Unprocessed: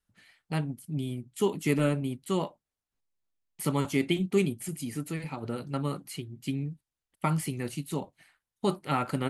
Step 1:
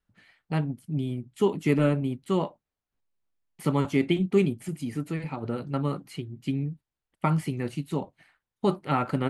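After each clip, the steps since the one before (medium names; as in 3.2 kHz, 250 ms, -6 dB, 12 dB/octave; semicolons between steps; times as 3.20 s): low-pass 2.2 kHz 6 dB/octave; trim +3.5 dB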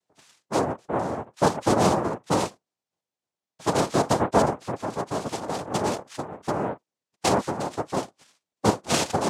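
noise-vocoded speech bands 2; trim +2 dB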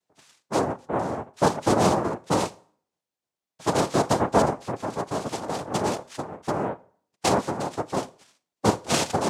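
reverberation RT60 0.50 s, pre-delay 17 ms, DRR 19 dB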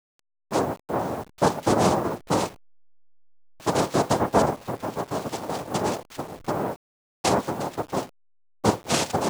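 send-on-delta sampling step -40 dBFS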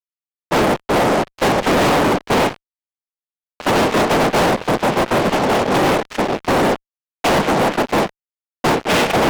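mistuned SSB -55 Hz 210–3200 Hz; fuzz box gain 38 dB, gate -45 dBFS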